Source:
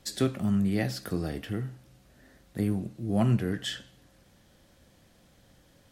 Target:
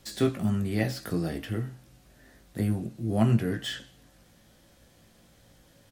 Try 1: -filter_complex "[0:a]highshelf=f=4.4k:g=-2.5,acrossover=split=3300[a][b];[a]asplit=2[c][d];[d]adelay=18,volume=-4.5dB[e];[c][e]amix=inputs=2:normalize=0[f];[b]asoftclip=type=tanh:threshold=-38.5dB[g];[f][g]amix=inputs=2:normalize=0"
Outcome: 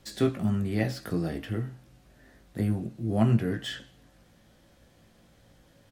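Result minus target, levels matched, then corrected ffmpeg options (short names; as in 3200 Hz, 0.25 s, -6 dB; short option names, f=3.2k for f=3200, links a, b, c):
8000 Hz band -3.5 dB
-filter_complex "[0:a]highshelf=f=4.4k:g=4.5,acrossover=split=3300[a][b];[a]asplit=2[c][d];[d]adelay=18,volume=-4.5dB[e];[c][e]amix=inputs=2:normalize=0[f];[b]asoftclip=type=tanh:threshold=-38.5dB[g];[f][g]amix=inputs=2:normalize=0"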